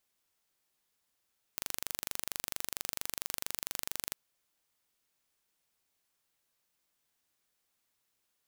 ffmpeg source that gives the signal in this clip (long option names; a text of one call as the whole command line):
ffmpeg -f lavfi -i "aevalsrc='0.422*eq(mod(n,1807),0)':duration=2.57:sample_rate=44100" out.wav